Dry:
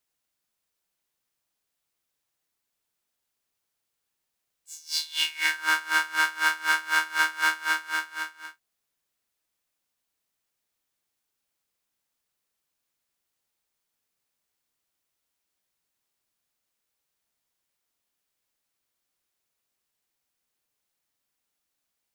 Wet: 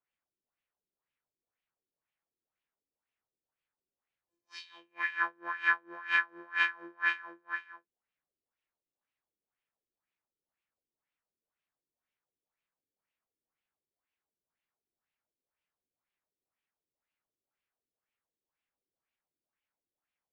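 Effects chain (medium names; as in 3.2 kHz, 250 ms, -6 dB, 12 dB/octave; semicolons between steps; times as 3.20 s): wide varispeed 1.09×; LFO low-pass sine 2 Hz 350–2700 Hz; trim -8 dB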